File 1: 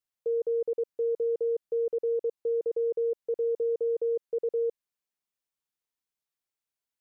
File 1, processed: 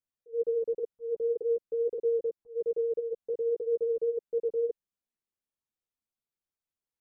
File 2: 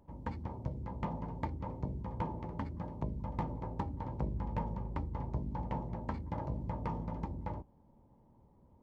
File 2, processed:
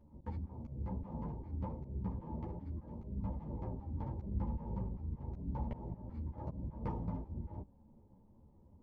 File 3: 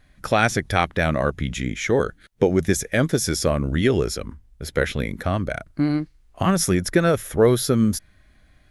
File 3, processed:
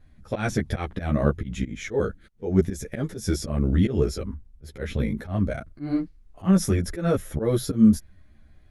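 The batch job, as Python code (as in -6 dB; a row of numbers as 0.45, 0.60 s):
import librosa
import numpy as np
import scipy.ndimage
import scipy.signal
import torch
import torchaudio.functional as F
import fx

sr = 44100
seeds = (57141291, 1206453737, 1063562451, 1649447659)

y = fx.auto_swell(x, sr, attack_ms=153.0)
y = fx.tilt_shelf(y, sr, db=5.5, hz=660.0)
y = fx.ensemble(y, sr)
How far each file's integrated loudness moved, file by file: -1.5, -2.5, -3.5 LU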